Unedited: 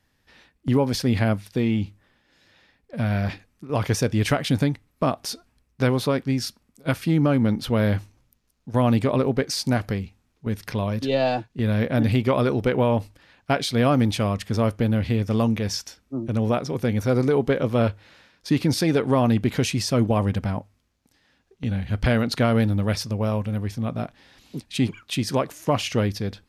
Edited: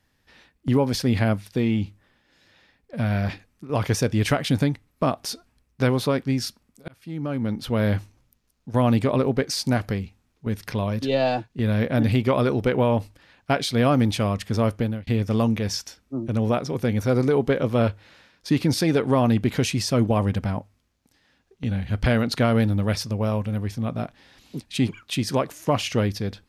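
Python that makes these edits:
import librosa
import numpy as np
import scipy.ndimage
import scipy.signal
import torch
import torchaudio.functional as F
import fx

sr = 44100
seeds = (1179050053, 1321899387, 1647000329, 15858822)

y = fx.edit(x, sr, fx.fade_in_span(start_s=6.88, length_s=1.06),
    fx.fade_out_span(start_s=14.77, length_s=0.3), tone=tone)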